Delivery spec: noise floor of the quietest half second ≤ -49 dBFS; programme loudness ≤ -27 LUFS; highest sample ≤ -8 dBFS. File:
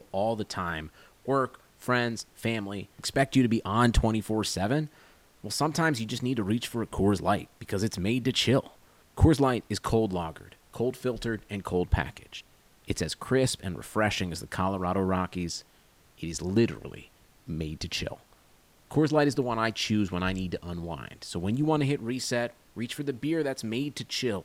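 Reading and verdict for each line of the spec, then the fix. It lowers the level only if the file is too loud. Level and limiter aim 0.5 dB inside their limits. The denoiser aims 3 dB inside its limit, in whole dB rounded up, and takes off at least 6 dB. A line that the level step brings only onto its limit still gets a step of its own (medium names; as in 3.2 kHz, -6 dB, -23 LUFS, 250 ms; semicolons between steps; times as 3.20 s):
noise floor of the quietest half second -60 dBFS: pass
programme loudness -29.0 LUFS: pass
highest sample -8.5 dBFS: pass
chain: none needed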